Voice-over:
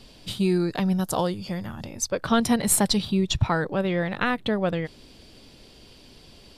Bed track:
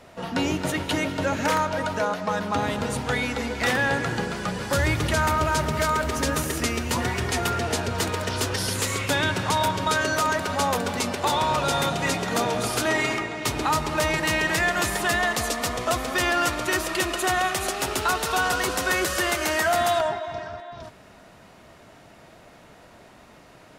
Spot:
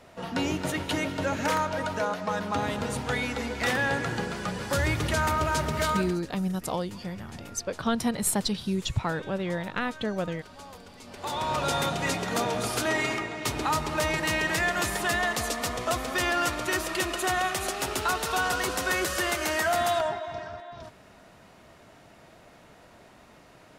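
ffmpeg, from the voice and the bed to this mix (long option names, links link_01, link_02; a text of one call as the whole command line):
ffmpeg -i stem1.wav -i stem2.wav -filter_complex "[0:a]adelay=5550,volume=-5.5dB[link_01];[1:a]volume=15.5dB,afade=type=out:start_time=5.91:duration=0.29:silence=0.112202,afade=type=in:start_time=11.04:duration=0.6:silence=0.112202[link_02];[link_01][link_02]amix=inputs=2:normalize=0" out.wav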